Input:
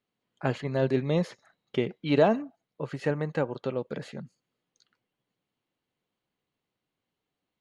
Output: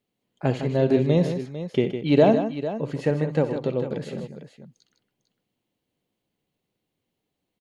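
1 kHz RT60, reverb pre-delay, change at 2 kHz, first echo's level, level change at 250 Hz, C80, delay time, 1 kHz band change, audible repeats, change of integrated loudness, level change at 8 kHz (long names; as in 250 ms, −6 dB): no reverb audible, no reverb audible, +0.5 dB, −13.5 dB, +7.0 dB, no reverb audible, 63 ms, +3.0 dB, 3, +5.5 dB, can't be measured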